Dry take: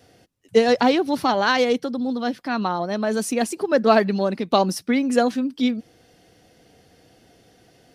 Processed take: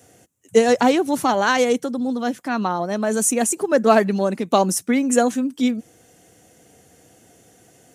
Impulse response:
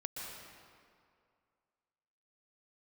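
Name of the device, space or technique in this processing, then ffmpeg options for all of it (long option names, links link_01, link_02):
budget condenser microphone: -af "highpass=67,highshelf=frequency=5800:width_type=q:width=3:gain=7,volume=1.5dB"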